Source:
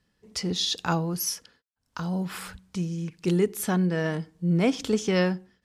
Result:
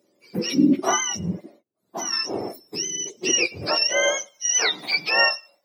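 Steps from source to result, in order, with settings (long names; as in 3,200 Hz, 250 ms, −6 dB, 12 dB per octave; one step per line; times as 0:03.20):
frequency axis turned over on the octave scale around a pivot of 1,000 Hz
high-pass filter sweep 370 Hz → 760 Hz, 0:03.44–0:04.76
level +6.5 dB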